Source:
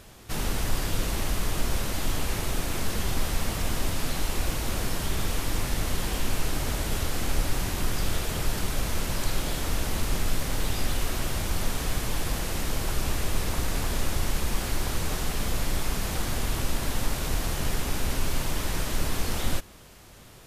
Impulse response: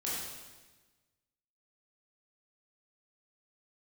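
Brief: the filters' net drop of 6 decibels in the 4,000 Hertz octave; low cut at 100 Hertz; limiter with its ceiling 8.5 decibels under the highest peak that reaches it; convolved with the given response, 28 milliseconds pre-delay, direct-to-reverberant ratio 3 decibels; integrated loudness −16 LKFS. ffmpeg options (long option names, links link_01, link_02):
-filter_complex "[0:a]highpass=100,equalizer=frequency=4000:width_type=o:gain=-8,alimiter=level_in=4dB:limit=-24dB:level=0:latency=1,volume=-4dB,asplit=2[link_01][link_02];[1:a]atrim=start_sample=2205,adelay=28[link_03];[link_02][link_03]afir=irnorm=-1:irlink=0,volume=-7dB[link_04];[link_01][link_04]amix=inputs=2:normalize=0,volume=19dB"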